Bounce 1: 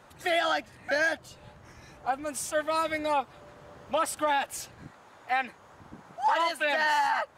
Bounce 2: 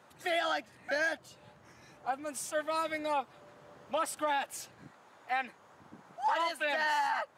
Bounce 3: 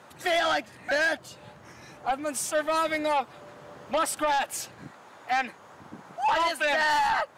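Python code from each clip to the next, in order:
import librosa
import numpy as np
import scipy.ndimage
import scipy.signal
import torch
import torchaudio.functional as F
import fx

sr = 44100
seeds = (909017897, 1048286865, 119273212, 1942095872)

y1 = scipy.signal.sosfilt(scipy.signal.butter(2, 130.0, 'highpass', fs=sr, output='sos'), x)
y1 = F.gain(torch.from_numpy(y1), -5.0).numpy()
y2 = fx.fold_sine(y1, sr, drive_db=5, ceiling_db=-20.0)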